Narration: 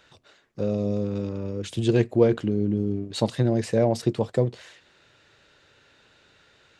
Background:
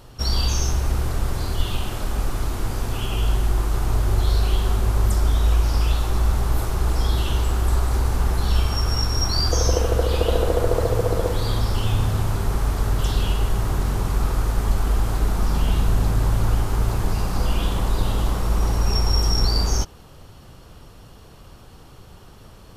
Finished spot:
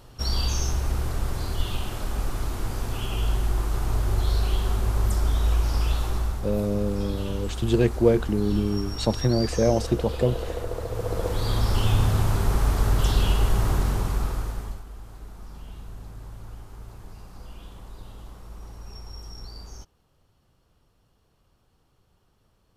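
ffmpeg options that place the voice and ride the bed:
ffmpeg -i stem1.wav -i stem2.wav -filter_complex "[0:a]adelay=5850,volume=0dB[link_01];[1:a]volume=7dB,afade=type=out:start_time=6.06:duration=0.36:silence=0.446684,afade=type=in:start_time=10.88:duration=0.93:silence=0.281838,afade=type=out:start_time=13.69:duration=1.15:silence=0.0891251[link_02];[link_01][link_02]amix=inputs=2:normalize=0" out.wav

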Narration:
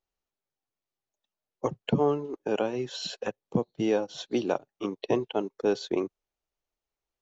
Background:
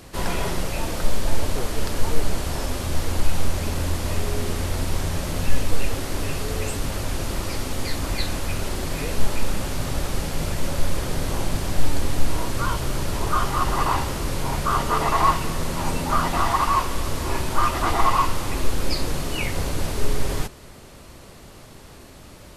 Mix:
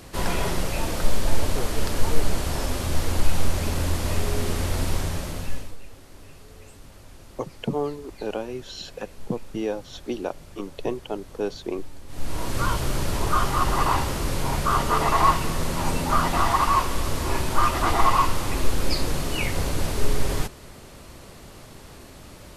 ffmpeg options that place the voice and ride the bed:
ffmpeg -i stem1.wav -i stem2.wav -filter_complex "[0:a]adelay=5750,volume=-2dB[link_01];[1:a]volume=20dB,afade=type=out:start_time=4.89:duration=0.87:silence=0.1,afade=type=in:start_time=12.07:duration=0.54:silence=0.1[link_02];[link_01][link_02]amix=inputs=2:normalize=0" out.wav

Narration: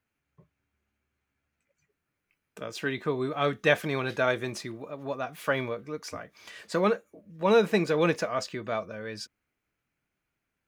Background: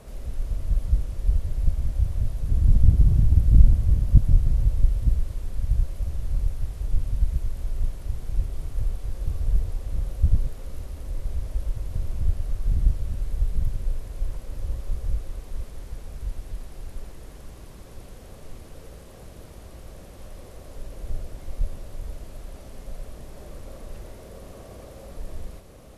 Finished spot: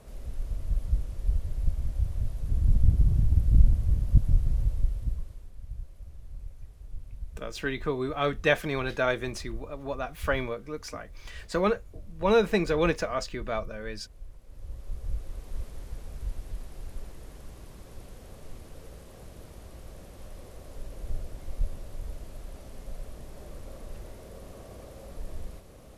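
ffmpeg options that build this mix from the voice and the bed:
ffmpeg -i stem1.wav -i stem2.wav -filter_complex "[0:a]adelay=4800,volume=-0.5dB[link_01];[1:a]volume=8.5dB,afade=type=out:start_time=4.59:duration=0.93:silence=0.266073,afade=type=in:start_time=14.42:duration=1.15:silence=0.211349[link_02];[link_01][link_02]amix=inputs=2:normalize=0" out.wav

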